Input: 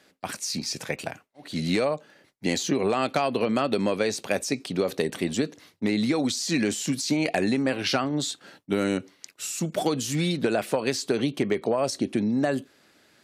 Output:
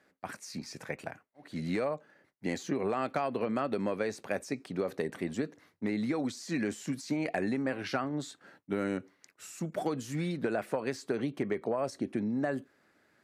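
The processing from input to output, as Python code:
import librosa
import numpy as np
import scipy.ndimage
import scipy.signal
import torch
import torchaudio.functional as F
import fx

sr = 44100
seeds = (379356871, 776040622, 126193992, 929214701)

y = fx.high_shelf_res(x, sr, hz=2400.0, db=-7.0, q=1.5)
y = y * 10.0 ** (-7.5 / 20.0)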